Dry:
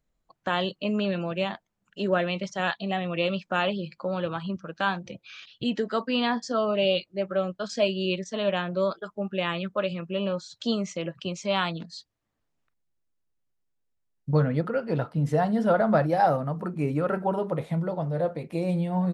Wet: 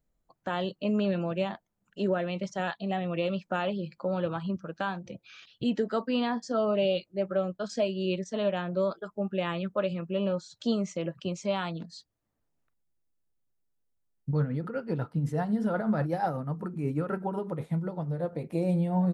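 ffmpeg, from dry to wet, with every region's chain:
-filter_complex "[0:a]asettb=1/sr,asplit=3[a][b][c];[a]atrim=end=14.294[d];[b]atrim=start=14.29:end=18.33,asetpts=PTS-STARTPTS,afade=t=in:d=0.004:c=qsin,afade=t=out:st=4.036:d=0.004:c=qsin,equalizer=f=630:t=o:w=0.66:g=-8,tremolo=f=8.1:d=0.51[e];[c]atrim=start=18.326[f];[d][e]acrossfade=d=0.004:c1=hsin:c2=qsin[g];[g][f]acrossfade=d=0.004:c1=qsin:c2=hsin,equalizer=f=3.1k:t=o:w=2.4:g=-6.5,bandreject=f=1.1k:w=20,alimiter=limit=-18dB:level=0:latency=1:release=370"

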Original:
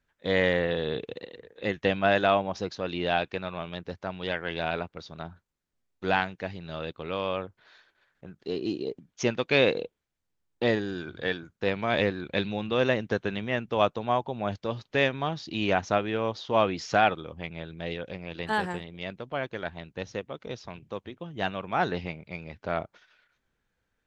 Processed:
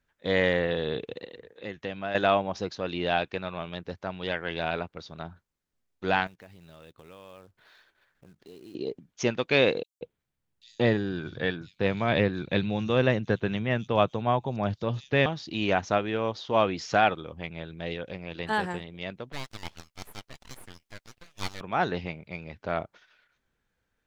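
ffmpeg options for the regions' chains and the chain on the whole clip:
-filter_complex "[0:a]asettb=1/sr,asplit=3[a][b][c];[a]atrim=end=1.504[d];[b]atrim=start=1.5:end=2.15,asetpts=PTS-STARTPTS,afade=t=in:d=0.004:c=qsin,afade=t=out:st=0.646:d=0.004:c=qsin,highpass=50,acompressor=threshold=-46dB:ratio=1.5:attack=3.2:release=140:knee=1:detection=peak[e];[c]atrim=start=2.146[f];[d][e]acrossfade=d=0.004:c1=hsin:c2=qsin[g];[g][f]acrossfade=d=0.004:c1=qsin:c2=hsin,asettb=1/sr,asplit=3[h][i][j];[h]atrim=end=6.274[k];[i]atrim=start=6.27:end=8.75,asetpts=PTS-STARTPTS,afade=t=in:d=0.004:c=qsin,afade=t=out:st=2.476:d=0.004:c=qsin,lowshelf=f=76:g=4,acrusher=bits=4:mode=log:mix=0:aa=0.000001,acompressor=threshold=-53dB:ratio=2.5:attack=3.2:release=140:knee=1:detection=peak[l];[j]atrim=start=8.746[m];[k][l]acrossfade=d=0.004:c1=hsin:c2=qsin[n];[n][m]acrossfade=d=0.004:c1=qsin:c2=hsin,asettb=1/sr,asplit=3[o][p][q];[o]atrim=end=9.834[r];[p]atrim=start=9.83:end=15.26,asetpts=PTS-STARTPTS,afade=t=in:d=0.004:c=qsin,afade=t=out:st=5.426:d=0.004:c=qsin,equalizer=f=130:w=0.97:g=7,acrossover=split=5500[s][t];[s]adelay=180[u];[u][t]amix=inputs=2:normalize=0,atrim=end_sample=239463[v];[q]atrim=start=15.256[w];[r][v]acrossfade=d=0.004:c1=hsin:c2=qsin[x];[x][w]acrossfade=d=0.004:c1=qsin:c2=hsin,asettb=1/sr,asplit=3[y][z][aa];[y]atrim=end=19.324[ab];[z]atrim=start=19.32:end=21.61,asetpts=PTS-STARTPTS,afade=t=in:d=0.004:c=qsin,afade=t=out:st=2.286:d=0.004:c=qsin,highpass=940,highshelf=f=5.6k:g=8.5,aeval=exprs='abs(val(0))':c=same[ac];[aa]atrim=start=21.606[ad];[ab][ac]acrossfade=d=0.004:c1=hsin:c2=qsin[ae];[ae][ad]acrossfade=d=0.004:c1=qsin:c2=hsin"

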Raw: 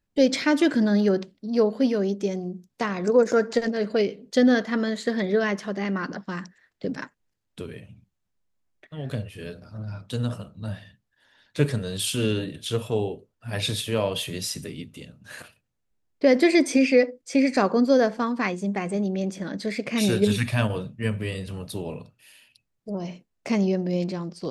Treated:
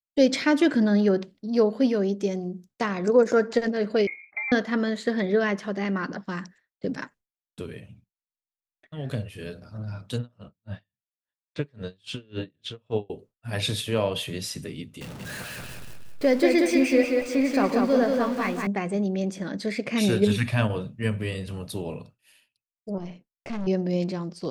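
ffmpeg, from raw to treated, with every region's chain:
-filter_complex "[0:a]asettb=1/sr,asplit=3[a][b][c];[a]atrim=end=4.074[d];[b]atrim=start=4.07:end=4.52,asetpts=PTS-STARTPTS,afade=t=in:d=0.004:c=qsin,afade=t=out:st=0.446:d=0.004:c=qsin,aecho=1:1:2.2:0.48,atrim=end_sample=19845,acompressor=threshold=-29dB:ratio=5:attack=3.2:release=140:knee=1:detection=peak,lowpass=f=2.2k:t=q:w=0.5098,lowpass=f=2.2k:t=q:w=0.6013,lowpass=f=2.2k:t=q:w=0.9,lowpass=f=2.2k:t=q:w=2.563,afreqshift=-2600[e];[c]atrim=start=4.516[f];[d][e]acrossfade=d=0.004:c1=hsin:c2=qsin[g];[g][f]acrossfade=d=0.004:c1=qsin:c2=hsin,asettb=1/sr,asplit=3[h][i][j];[h]atrim=end=10.184[k];[i]atrim=start=10.18:end=13.1,asetpts=PTS-STARTPTS,afade=t=in:d=0.004:c=qsin,afade=t=out:st=2.916:d=0.004:c=qsin,lowpass=3.9k,aeval=exprs='val(0)*pow(10,-36*(0.5-0.5*cos(2*PI*3.6*n/s))/20)':c=same[l];[j]atrim=start=13.096[m];[k][l]acrossfade=d=0.004:c1=hsin:c2=qsin[n];[n][m]acrossfade=d=0.004:c1=qsin:c2=hsin,asettb=1/sr,asplit=3[o][p][q];[o]atrim=end=15.014[r];[p]atrim=start=15.01:end=18.67,asetpts=PTS-STARTPTS,afade=t=in:d=0.004:c=qsin,afade=t=out:st=3.656:d=0.004:c=qsin,aeval=exprs='val(0)+0.5*0.0316*sgn(val(0))':c=same,flanger=delay=5.4:depth=6.3:regen=-68:speed=1.9:shape=sinusoidal,aecho=1:1:184|368|552|736|920:0.668|0.234|0.0819|0.0287|0.01,atrim=end_sample=161406[s];[q]atrim=start=18.666[t];[r][s]acrossfade=d=0.004:c1=hsin:c2=qsin[u];[u][t]acrossfade=d=0.004:c1=qsin:c2=hsin,asettb=1/sr,asplit=3[v][w][x];[v]atrim=end=22.984[y];[w]atrim=start=22.98:end=23.67,asetpts=PTS-STARTPTS,afade=t=in:d=0.004:c=qsin,afade=t=out:st=0.686:d=0.004:c=qsin,bass=f=250:g=1,treble=f=4k:g=-9,aeval=exprs='(tanh(28.2*val(0)+0.65)-tanh(0.65))/28.2':c=same[z];[x]atrim=start=23.666[aa];[y][z]acrossfade=d=0.004:c1=hsin:c2=qsin[ab];[ab][aa]acrossfade=d=0.004:c1=qsin:c2=hsin,agate=range=-33dB:threshold=-46dB:ratio=3:detection=peak,adynamicequalizer=threshold=0.00794:dfrequency=4100:dqfactor=0.7:tfrequency=4100:tqfactor=0.7:attack=5:release=100:ratio=0.375:range=3:mode=cutabove:tftype=highshelf"

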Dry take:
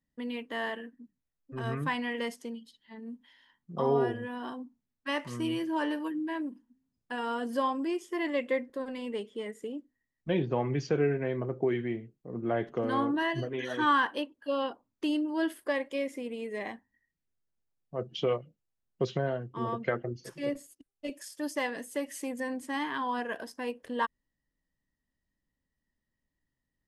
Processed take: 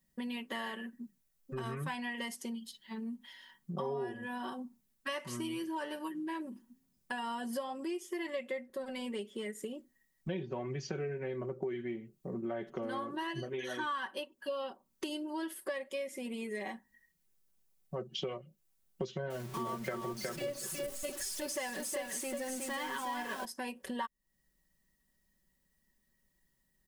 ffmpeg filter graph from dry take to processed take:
-filter_complex "[0:a]asettb=1/sr,asplit=3[a][b][c];[a]atrim=end=19.304[d];[b]atrim=start=19.3:end=23.45,asetpts=PTS-STARTPTS,afade=t=in:d=0.004:c=qsin,afade=t=out:st=4.146:d=0.004:c=qsin,aeval=exprs='val(0)+0.5*0.00944*sgn(val(0))':c=same,acrossover=split=9500[e][f];[f]acompressor=threshold=-55dB:ratio=4:attack=1:release=60[g];[e][g]amix=inputs=2:normalize=0,aecho=1:1:366:0.562,atrim=end_sample=183015[h];[c]atrim=start=23.446[i];[d][h]acrossfade=d=0.004:c1=hsin:c2=qsin[j];[j][i]acrossfade=d=0.004:c1=qsin:c2=hsin,highshelf=f=6.5k:g=12,aecho=1:1:5.3:0.73,acompressor=threshold=-42dB:ratio=4,volume=4dB"

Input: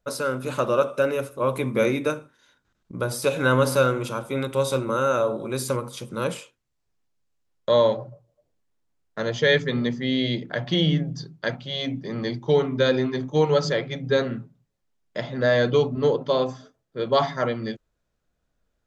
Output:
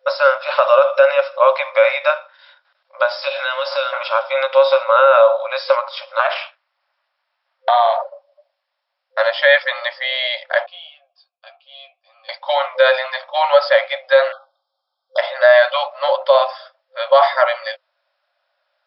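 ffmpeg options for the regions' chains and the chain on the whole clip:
-filter_complex "[0:a]asettb=1/sr,asplit=3[a][b][c];[a]atrim=end=3.104[d];[b]atrim=start=3.1:end=3.93,asetpts=PTS-STARTPTS,afade=t=in:d=0.004:c=qsin,afade=t=out:st=0.826:d=0.004:c=qsin,acrossover=split=210|3000[e][f][g];[f]acompressor=threshold=-34dB:ratio=4:attack=3.2:release=140:knee=2.83:detection=peak[h];[e][h][g]amix=inputs=3:normalize=0,asplit=2[i][j];[j]adelay=23,volume=-11dB[k];[i][k]amix=inputs=2:normalize=0,atrim=end_sample=36603[l];[c]atrim=start=3.926[m];[d][l]acrossfade=d=0.004:c1=hsin:c2=qsin[n];[n][m]acrossfade=d=0.004:c1=qsin:c2=hsin,asettb=1/sr,asplit=3[o][p][q];[o]atrim=end=6.194[r];[p]atrim=start=6.19:end=8.02,asetpts=PTS-STARTPTS,afade=t=in:d=0.004:c=qsin,afade=t=out:st=1.826:d=0.004:c=qsin,equalizer=f=1.3k:w=0.57:g=11,acompressor=threshold=-20dB:ratio=4:attack=3.2:release=140:knee=1:detection=peak,aeval=exprs='val(0)*sin(2*PI*130*n/s)':c=same[s];[q]atrim=start=8.016[t];[r][s]acrossfade=d=0.004:c1=hsin:c2=qsin[u];[u][t]acrossfade=d=0.004:c1=qsin:c2=hsin,asettb=1/sr,asplit=3[v][w][x];[v]atrim=end=10.664[y];[w]atrim=start=10.66:end=12.29,asetpts=PTS-STARTPTS,afade=t=in:d=0.004:c=qsin,afade=t=out:st=1.626:d=0.004:c=qsin,asplit=3[z][aa][ab];[z]bandpass=f=730:t=q:w=8,volume=0dB[ac];[aa]bandpass=f=1.09k:t=q:w=8,volume=-6dB[ad];[ab]bandpass=f=2.44k:t=q:w=8,volume=-9dB[ae];[ac][ad][ae]amix=inputs=3:normalize=0,aderivative,asplit=2[af][ag];[ag]adelay=13,volume=-5dB[ah];[af][ah]amix=inputs=2:normalize=0,atrim=end_sample=71883[ai];[x]atrim=start=12.286[aj];[y][ai]acrossfade=d=0.004:c1=hsin:c2=qsin[ak];[ak][aj]acrossfade=d=0.004:c1=qsin:c2=hsin,asettb=1/sr,asplit=3[al][am][an];[al]atrim=end=14.324[ao];[am]atrim=start=14.32:end=15.18,asetpts=PTS-STARTPTS,afade=t=in:d=0.004:c=qsin,afade=t=out:st=0.856:d=0.004:c=qsin,asuperstop=centerf=2200:order=20:qfactor=1.3,aecho=1:1:2.5:0.49,atrim=end_sample=37926[ap];[an]atrim=start=15.176[aq];[ao][ap]acrossfade=d=0.004:c1=hsin:c2=qsin[ar];[ar][aq]acrossfade=d=0.004:c1=qsin:c2=hsin,afftfilt=real='re*between(b*sr/4096,520,5500)':imag='im*between(b*sr/4096,520,5500)':win_size=4096:overlap=0.75,acrossover=split=2900[as][at];[at]acompressor=threshold=-43dB:ratio=4:attack=1:release=60[au];[as][au]amix=inputs=2:normalize=0,alimiter=level_in=15dB:limit=-1dB:release=50:level=0:latency=1,volume=-1dB"

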